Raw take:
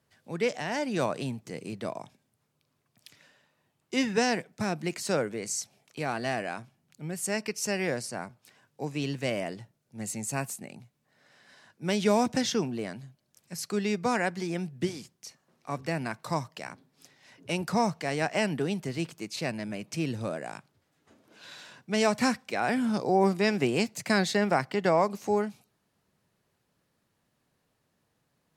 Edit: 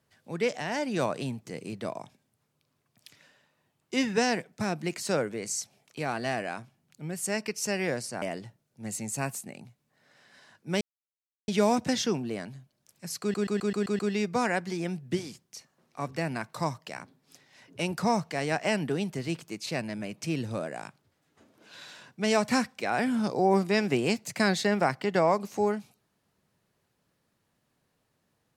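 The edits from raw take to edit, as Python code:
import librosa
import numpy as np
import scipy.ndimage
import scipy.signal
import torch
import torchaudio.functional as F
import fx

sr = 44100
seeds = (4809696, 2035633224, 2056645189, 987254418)

y = fx.edit(x, sr, fx.cut(start_s=8.22, length_s=1.15),
    fx.insert_silence(at_s=11.96, length_s=0.67),
    fx.stutter(start_s=13.69, slice_s=0.13, count=7), tone=tone)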